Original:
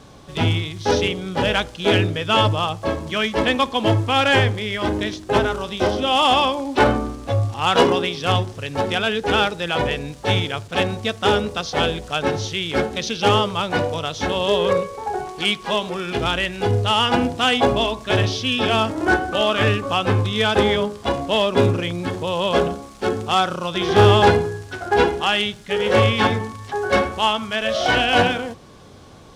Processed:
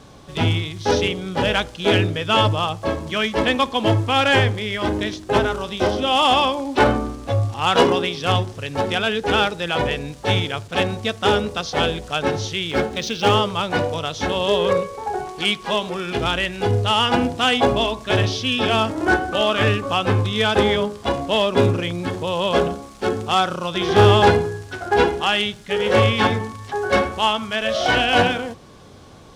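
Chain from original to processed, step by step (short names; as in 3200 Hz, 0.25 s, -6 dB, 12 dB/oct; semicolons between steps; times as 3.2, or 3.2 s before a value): 12.69–13.36 median filter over 3 samples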